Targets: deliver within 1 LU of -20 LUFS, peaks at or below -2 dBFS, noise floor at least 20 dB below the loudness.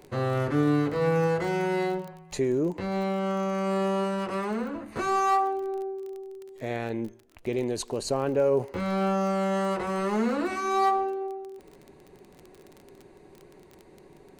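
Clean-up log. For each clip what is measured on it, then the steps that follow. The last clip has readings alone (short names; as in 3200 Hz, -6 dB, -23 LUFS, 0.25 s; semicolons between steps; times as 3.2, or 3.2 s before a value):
ticks 27/s; loudness -27.5 LUFS; peak -14.0 dBFS; loudness target -20.0 LUFS
-> de-click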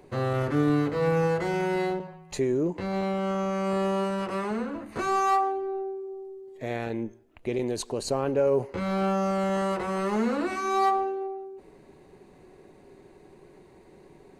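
ticks 0/s; loudness -27.5 LUFS; peak -14.0 dBFS; loudness target -20.0 LUFS
-> gain +7.5 dB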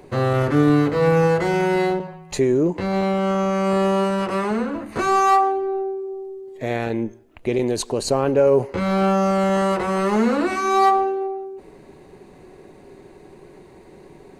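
loudness -20.0 LUFS; peak -6.5 dBFS; noise floor -46 dBFS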